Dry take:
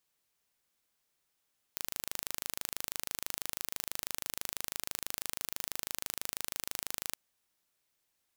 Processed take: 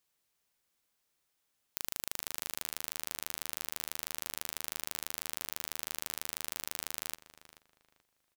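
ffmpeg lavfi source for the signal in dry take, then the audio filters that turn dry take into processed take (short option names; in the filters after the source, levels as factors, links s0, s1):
-f lavfi -i "aevalsrc='0.398*eq(mod(n,1690),0)':d=5.37:s=44100"
-filter_complex "[0:a]asplit=2[s0][s1];[s1]adelay=433,lowpass=f=3300:p=1,volume=0.211,asplit=2[s2][s3];[s3]adelay=433,lowpass=f=3300:p=1,volume=0.28,asplit=2[s4][s5];[s5]adelay=433,lowpass=f=3300:p=1,volume=0.28[s6];[s0][s2][s4][s6]amix=inputs=4:normalize=0"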